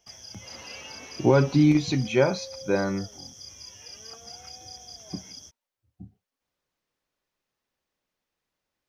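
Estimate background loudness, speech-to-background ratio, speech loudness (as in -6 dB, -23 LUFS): -41.5 LUFS, 18.0 dB, -23.5 LUFS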